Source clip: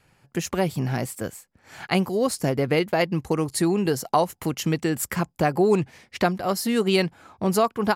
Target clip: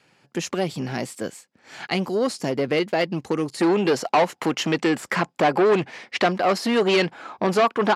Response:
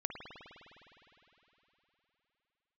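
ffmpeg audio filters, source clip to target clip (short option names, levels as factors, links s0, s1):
-af "aemphasis=mode=production:type=cd,deesser=0.35,asetnsamples=n=441:p=0,asendcmd='3.61 equalizer g 4',equalizer=f=1100:w=0.36:g=-6,asoftclip=type=tanh:threshold=0.0891,highpass=250,lowpass=4000,volume=2.37"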